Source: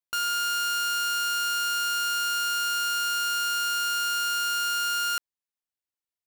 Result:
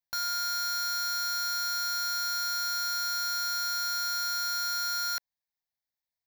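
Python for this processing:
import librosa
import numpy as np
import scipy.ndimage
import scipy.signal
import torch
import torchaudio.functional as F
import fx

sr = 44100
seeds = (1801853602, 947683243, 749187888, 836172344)

y = fx.fixed_phaser(x, sr, hz=1900.0, stages=8)
y = y * 10.0 ** (2.5 / 20.0)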